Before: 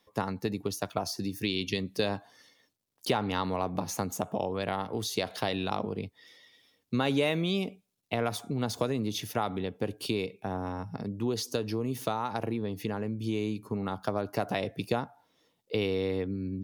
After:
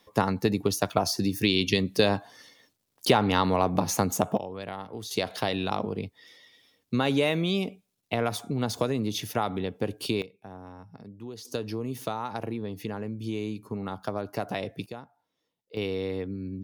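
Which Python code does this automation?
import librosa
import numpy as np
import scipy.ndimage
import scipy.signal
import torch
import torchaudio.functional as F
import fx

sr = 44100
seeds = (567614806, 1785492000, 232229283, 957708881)

y = fx.gain(x, sr, db=fx.steps((0.0, 7.0), (4.37, -5.0), (5.11, 2.5), (10.22, -10.0), (11.45, -1.0), (14.86, -11.0), (15.77, -1.0)))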